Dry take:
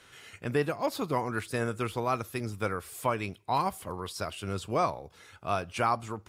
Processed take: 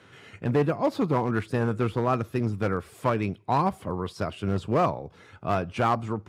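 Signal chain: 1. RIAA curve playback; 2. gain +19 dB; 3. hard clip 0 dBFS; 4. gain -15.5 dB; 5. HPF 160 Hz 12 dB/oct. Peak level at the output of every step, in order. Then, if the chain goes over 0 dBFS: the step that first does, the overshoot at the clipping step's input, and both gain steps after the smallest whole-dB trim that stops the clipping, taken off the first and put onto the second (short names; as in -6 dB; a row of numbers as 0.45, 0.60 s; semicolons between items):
-10.0, +9.0, 0.0, -15.5, -10.5 dBFS; step 2, 9.0 dB; step 2 +10 dB, step 4 -6.5 dB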